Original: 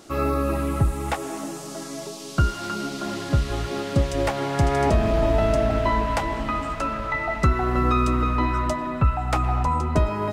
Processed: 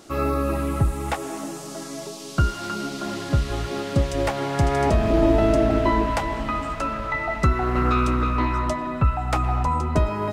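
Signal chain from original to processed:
0:05.10–0:06.10: parametric band 330 Hz +10.5 dB 0.63 octaves
0:07.57–0:08.90: highs frequency-modulated by the lows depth 0.17 ms

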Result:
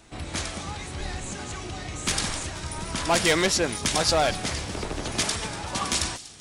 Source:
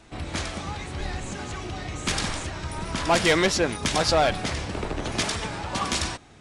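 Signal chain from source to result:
high-shelf EQ 6,900 Hz +11 dB
delay with a high-pass on its return 241 ms, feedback 78%, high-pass 3,300 Hz, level −16 dB
level −2 dB

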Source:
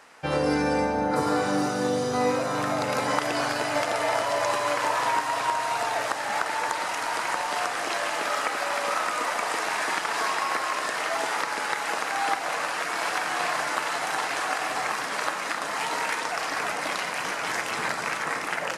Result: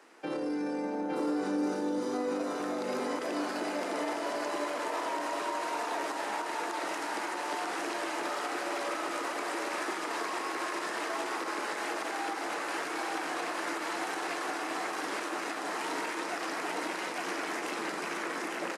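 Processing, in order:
Butterworth high-pass 160 Hz 72 dB per octave
parametric band 340 Hz +14.5 dB 0.66 octaves
brickwall limiter −19 dBFS, peak gain reduction 12 dB
on a send: single-tap delay 862 ms −3.5 dB
on the sum: level −7.5 dB

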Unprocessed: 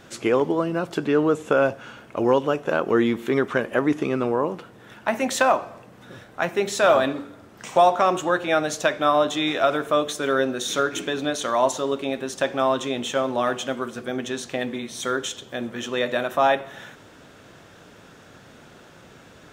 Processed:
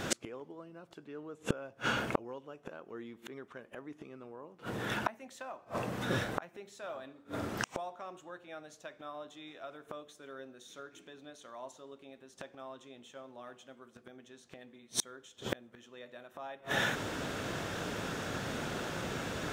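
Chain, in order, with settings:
gate with flip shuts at −24 dBFS, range −36 dB
level +10 dB

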